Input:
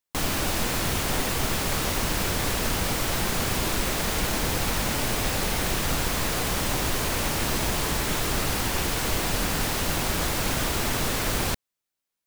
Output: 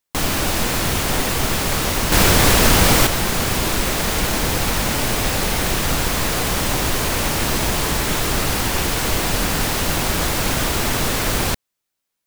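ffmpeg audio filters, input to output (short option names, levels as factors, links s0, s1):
-filter_complex "[0:a]asettb=1/sr,asplit=3[s0][s1][s2];[s0]atrim=end=2.124[s3];[s1]atrim=start=2.12:end=3.07,asetpts=PTS-STARTPTS,afade=t=in:d=0.004:c=qsin,afade=t=out:st=0.946:d=0.004:c=qsin,acontrast=74[s4];[s2]atrim=start=3.066[s5];[s3][s4]acrossfade=d=0.004:c1=hsin:c2=qsin[s6];[s6][s5]acrossfade=d=0.004:c1=qsin:c2=hsin,volume=2"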